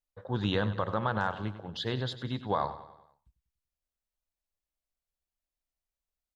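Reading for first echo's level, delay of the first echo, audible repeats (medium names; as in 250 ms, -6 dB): -14.0 dB, 96 ms, 4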